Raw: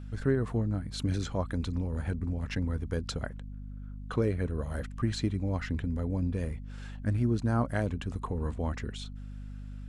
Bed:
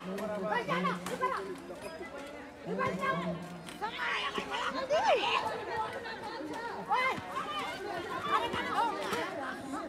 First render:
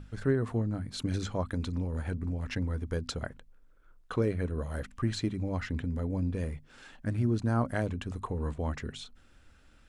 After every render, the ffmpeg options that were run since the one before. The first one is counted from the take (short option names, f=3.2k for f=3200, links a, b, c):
-af "bandreject=f=50:t=h:w=6,bandreject=f=100:t=h:w=6,bandreject=f=150:t=h:w=6,bandreject=f=200:t=h:w=6,bandreject=f=250:t=h:w=6"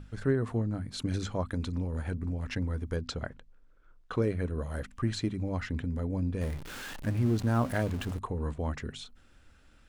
-filter_complex "[0:a]asettb=1/sr,asplit=3[a][b][c];[a]atrim=end=2.964[d];[b]atrim=start=2.96:end=4.14,asetpts=PTS-STARTPTS,afade=t=in:d=0.004:c=qsin,afade=t=out:st=1.176:d=0.004:c=qsin,lowpass=6.6k[e];[c]atrim=start=4.136[f];[d][e]acrossfade=d=0.004:c1=hsin:c2=qsin[g];[g][f]acrossfade=d=0.004:c1=qsin:c2=hsin,asettb=1/sr,asplit=3[h][i][j];[h]atrim=end=6.414[k];[i]atrim=start=6.41:end=8.19,asetpts=PTS-STARTPTS,afade=t=in:d=0.004:c=qsin,afade=t=out:st=1.776:d=0.004:c=qsin,aeval=exprs='val(0)+0.5*0.0133*sgn(val(0))':c=same[l];[j]atrim=start=8.186[m];[k][l]acrossfade=d=0.004:c1=hsin:c2=qsin[n];[n][m]acrossfade=d=0.004:c1=qsin:c2=hsin"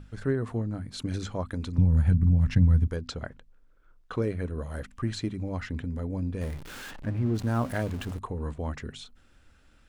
-filter_complex "[0:a]asettb=1/sr,asplit=3[a][b][c];[a]atrim=end=1.784[d];[b]atrim=start=1.78:end=2.88,asetpts=PTS-STARTPTS,afade=t=in:d=0.004:c=qsin,afade=t=out:st=1.096:d=0.004:c=qsin,lowshelf=f=240:t=q:w=1.5:g=12[e];[c]atrim=start=2.876[f];[d][e]acrossfade=d=0.004:c1=hsin:c2=qsin[g];[g][f]acrossfade=d=0.004:c1=qsin:c2=hsin,asplit=3[h][i][j];[h]afade=t=out:st=6.9:d=0.02[k];[i]aemphasis=mode=reproduction:type=75kf,afade=t=in:st=6.9:d=0.02,afade=t=out:st=7.34:d=0.02[l];[j]afade=t=in:st=7.34:d=0.02[m];[k][l][m]amix=inputs=3:normalize=0"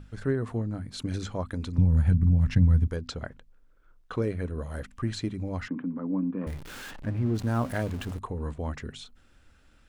-filter_complex "[0:a]asettb=1/sr,asplit=3[a][b][c];[a]atrim=end=5.684[d];[b]atrim=start=5.68:end=6.47,asetpts=PTS-STARTPTS,afade=t=in:d=0.004:c=qsin,afade=t=out:st=0.786:d=0.004:c=qsin,highpass=f=190:w=0.5412,highpass=f=190:w=1.3066,equalizer=f=190:t=q:w=4:g=7,equalizer=f=290:t=q:w=4:g=10,equalizer=f=410:t=q:w=4:g=-5,equalizer=f=690:t=q:w=4:g=-4,equalizer=f=1.1k:t=q:w=4:g=9,equalizer=f=1.9k:t=q:w=4:g=-7,lowpass=f=2.1k:w=0.5412,lowpass=f=2.1k:w=1.3066[e];[c]atrim=start=6.466[f];[d][e]acrossfade=d=0.004:c1=hsin:c2=qsin[g];[g][f]acrossfade=d=0.004:c1=qsin:c2=hsin"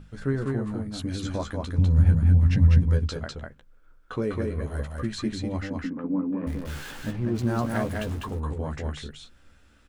-filter_complex "[0:a]asplit=2[a][b];[b]adelay=14,volume=-6dB[c];[a][c]amix=inputs=2:normalize=0,asplit=2[d][e];[e]aecho=0:1:200:0.708[f];[d][f]amix=inputs=2:normalize=0"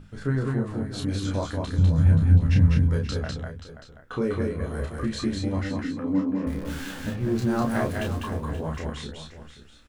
-filter_complex "[0:a]asplit=2[a][b];[b]adelay=31,volume=-3dB[c];[a][c]amix=inputs=2:normalize=0,aecho=1:1:530:0.237"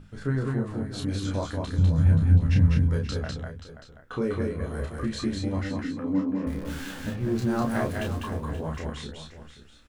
-af "volume=-1.5dB"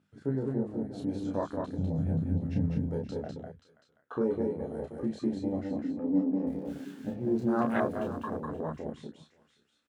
-af "highpass=200,afwtdn=0.0224"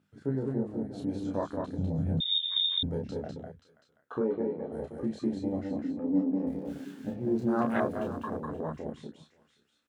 -filter_complex "[0:a]asettb=1/sr,asplit=3[a][b][c];[a]atrim=end=2.204[d];[b]atrim=start=2.2:end=2.83,asetpts=PTS-STARTPTS,afade=t=in:d=0.004:c=qsin,afade=t=out:st=0.626:d=0.004:c=qsin,lowpass=f=3.2k:t=q:w=0.5098,lowpass=f=3.2k:t=q:w=0.6013,lowpass=f=3.2k:t=q:w=0.9,lowpass=f=3.2k:t=q:w=2.563,afreqshift=-3800[e];[c]atrim=start=2.826[f];[d][e]acrossfade=d=0.004:c1=hsin:c2=qsin[g];[g][f]acrossfade=d=0.004:c1=qsin:c2=hsin,asplit=3[h][i][j];[h]afade=t=out:st=4.2:d=0.02[k];[i]highpass=180,lowpass=3.3k,afade=t=in:st=4.2:d=0.02,afade=t=out:st=4.71:d=0.02[l];[j]afade=t=in:st=4.71:d=0.02[m];[k][l][m]amix=inputs=3:normalize=0"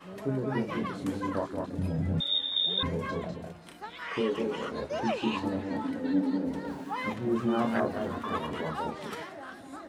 -filter_complex "[1:a]volume=-5dB[a];[0:a][a]amix=inputs=2:normalize=0"